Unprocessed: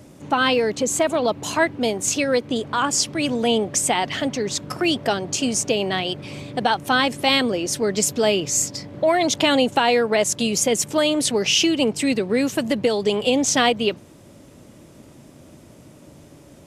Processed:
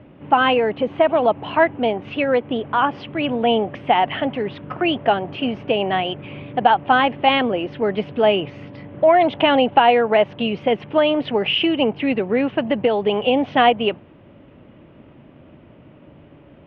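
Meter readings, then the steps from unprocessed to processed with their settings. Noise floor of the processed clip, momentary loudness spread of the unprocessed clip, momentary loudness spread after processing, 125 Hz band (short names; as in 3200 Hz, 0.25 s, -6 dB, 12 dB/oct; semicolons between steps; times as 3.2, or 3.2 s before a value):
-47 dBFS, 6 LU, 8 LU, 0.0 dB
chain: elliptic low-pass 3000 Hz, stop band 60 dB; dynamic EQ 770 Hz, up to +7 dB, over -36 dBFS, Q 2; gain +1 dB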